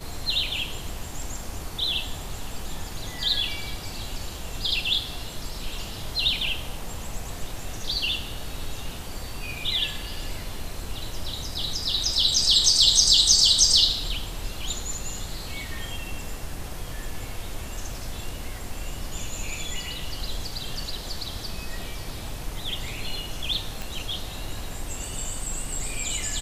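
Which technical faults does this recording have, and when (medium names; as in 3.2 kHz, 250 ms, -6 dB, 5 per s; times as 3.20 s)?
23.82 s: pop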